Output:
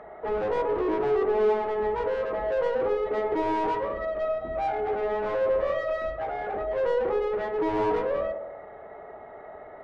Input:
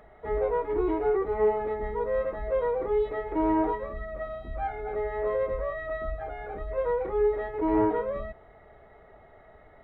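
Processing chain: treble shelf 3.1 kHz -9 dB; overdrive pedal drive 26 dB, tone 1.1 kHz, clips at -14.5 dBFS; on a send: band-passed feedback delay 68 ms, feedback 72%, band-pass 470 Hz, level -5.5 dB; on the sum: trim -5 dB

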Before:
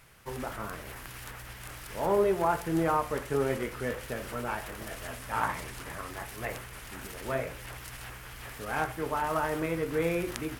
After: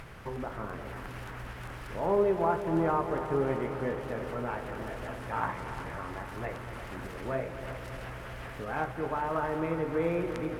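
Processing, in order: upward compressor, threshold -32 dBFS; low-pass 1.3 kHz 6 dB/octave; multi-head delay 118 ms, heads second and third, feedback 71%, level -12 dB

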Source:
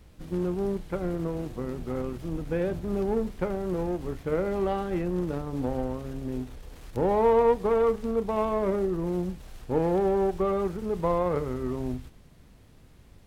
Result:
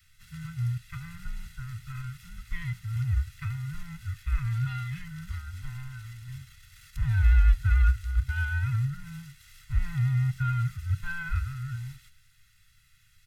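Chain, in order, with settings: every band turned upside down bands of 500 Hz; elliptic band-stop 120–1600 Hz, stop band 70 dB; comb 1.5 ms, depth 75%

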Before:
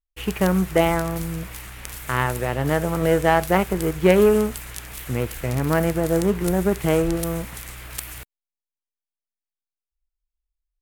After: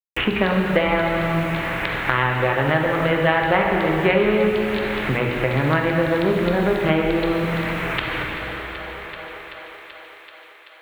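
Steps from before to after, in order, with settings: local Wiener filter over 9 samples; steep low-pass 4.1 kHz 72 dB/octave; peaking EQ 2.2 kHz +5.5 dB 1.5 oct; hum notches 60/120/180/240/300/360/420/480 Hz; harmonic-percussive split percussive +5 dB; in parallel at 0 dB: compression 6:1, threshold -27 dBFS, peak gain reduction 18 dB; on the sum: bit crusher 8-bit; on a send: thinning echo 383 ms, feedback 69%, high-pass 260 Hz, level -20 dB; on the sum: plate-style reverb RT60 2.2 s, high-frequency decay 0.9×, DRR 0 dB; three bands compressed up and down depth 70%; trim -4.5 dB

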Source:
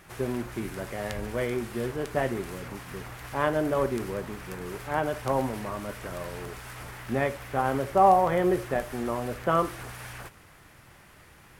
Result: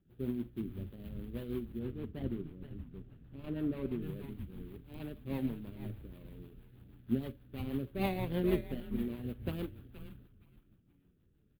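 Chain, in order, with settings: median filter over 41 samples; FFT filter 120 Hz 0 dB, 260 Hz +4 dB, 660 Hz -12 dB, 1.2 kHz -6 dB, 2.1 kHz -7 dB, 3.4 kHz +3 dB, 5.9 kHz -21 dB, 14 kHz +11 dB; frequency-shifting echo 471 ms, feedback 30%, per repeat -150 Hz, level -7 dB; rotary cabinet horn 6.3 Hz; 1.79–4.02 s: treble shelf 3.6 kHz -10.5 dB; upward expansion 1.5:1, over -48 dBFS; trim -1.5 dB

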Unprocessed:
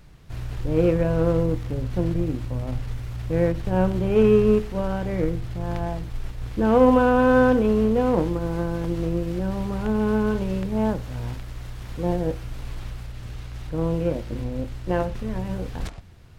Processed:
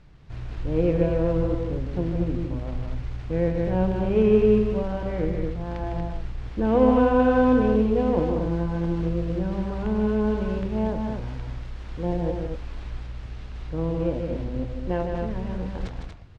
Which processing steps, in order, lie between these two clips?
distance through air 110 m; loudspeakers at several distances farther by 53 m -6 dB, 81 m -6 dB; dynamic bell 1.3 kHz, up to -5 dB, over -37 dBFS, Q 1.9; trim -2.5 dB

